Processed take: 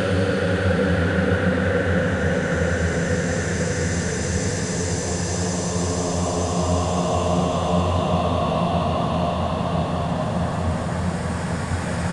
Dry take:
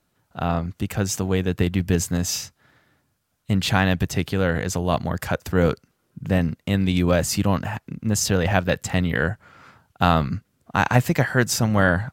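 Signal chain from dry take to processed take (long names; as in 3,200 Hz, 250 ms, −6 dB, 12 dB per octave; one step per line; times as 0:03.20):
converter with a step at zero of −29.5 dBFS
downsampling to 22,050 Hz
extreme stretch with random phases 15×, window 0.50 s, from 0:04.38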